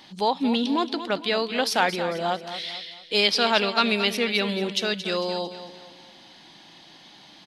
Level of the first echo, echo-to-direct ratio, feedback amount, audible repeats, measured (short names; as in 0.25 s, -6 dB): -11.5 dB, -10.5 dB, 43%, 4